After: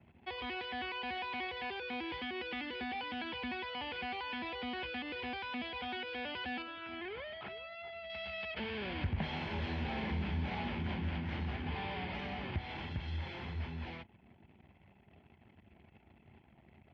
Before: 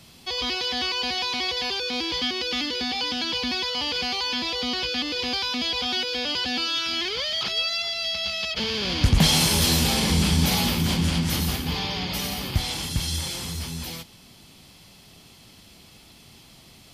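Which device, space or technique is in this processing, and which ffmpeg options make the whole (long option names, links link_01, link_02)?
bass amplifier: -filter_complex "[0:a]acompressor=threshold=-28dB:ratio=3,highpass=frequency=66:width=0.5412,highpass=frequency=66:width=1.3066,equalizer=frequency=120:width_type=q:width=4:gain=-7,equalizer=frequency=170:width_type=q:width=4:gain=-8,equalizer=frequency=280:width_type=q:width=4:gain=-7,equalizer=frequency=490:width_type=q:width=4:gain=-6,equalizer=frequency=1200:width_type=q:width=4:gain=-8,lowpass=frequency=2300:width=0.5412,lowpass=frequency=2300:width=1.3066,asettb=1/sr,asplit=3[link_01][link_02][link_03];[link_01]atrim=end=6.624[link_04];[link_02]atrim=start=6.62:end=8.1,asetpts=PTS-STARTPTS,afade=type=in:duration=0.004:curve=qsin,afade=type=out:start_time=1.476:duration=0.004:curve=qsin,lowpass=frequency=1500:poles=1[link_05];[link_03]atrim=start=8.096[link_06];[link_04][link_05]acrossfade=duration=0.004:curve1=hsin:curve2=qsin[link_07];[link_07][link_06]acrossfade=duration=0.004:curve1=qsin:curve2=hsin,anlmdn=0.000398,volume=-2.5dB"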